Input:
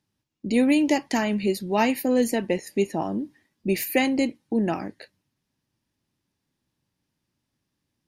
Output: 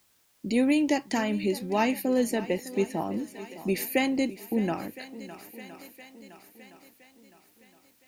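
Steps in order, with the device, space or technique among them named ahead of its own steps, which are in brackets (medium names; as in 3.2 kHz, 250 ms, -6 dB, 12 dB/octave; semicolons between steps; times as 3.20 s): shuffle delay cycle 1015 ms, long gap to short 1.5:1, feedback 39%, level -17 dB; noise-reduction cassette on a plain deck (tape noise reduction on one side only encoder only; wow and flutter 20 cents; white noise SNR 37 dB); trim -3.5 dB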